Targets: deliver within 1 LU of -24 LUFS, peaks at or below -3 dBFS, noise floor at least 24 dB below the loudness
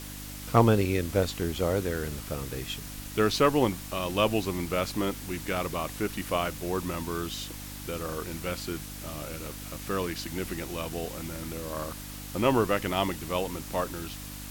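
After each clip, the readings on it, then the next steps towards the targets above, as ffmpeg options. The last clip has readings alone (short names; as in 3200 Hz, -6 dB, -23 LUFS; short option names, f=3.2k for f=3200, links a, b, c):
hum 50 Hz; harmonics up to 300 Hz; hum level -40 dBFS; noise floor -41 dBFS; noise floor target -54 dBFS; loudness -30.0 LUFS; peak -8.5 dBFS; loudness target -24.0 LUFS
-> -af "bandreject=f=50:t=h:w=4,bandreject=f=100:t=h:w=4,bandreject=f=150:t=h:w=4,bandreject=f=200:t=h:w=4,bandreject=f=250:t=h:w=4,bandreject=f=300:t=h:w=4"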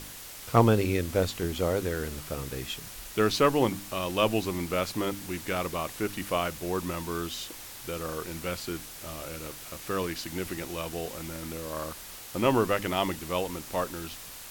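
hum none; noise floor -44 dBFS; noise floor target -54 dBFS
-> -af "afftdn=nr=10:nf=-44"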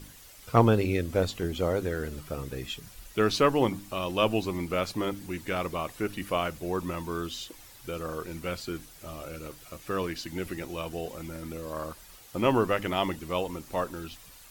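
noise floor -51 dBFS; noise floor target -54 dBFS
-> -af "afftdn=nr=6:nf=-51"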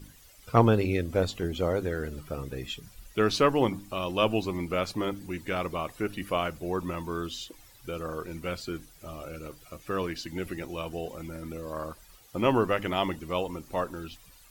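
noise floor -55 dBFS; loudness -30.0 LUFS; peak -8.0 dBFS; loudness target -24.0 LUFS
-> -af "volume=6dB,alimiter=limit=-3dB:level=0:latency=1"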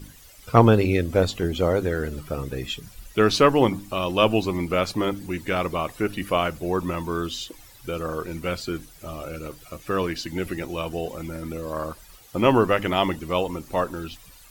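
loudness -24.5 LUFS; peak -3.0 dBFS; noise floor -49 dBFS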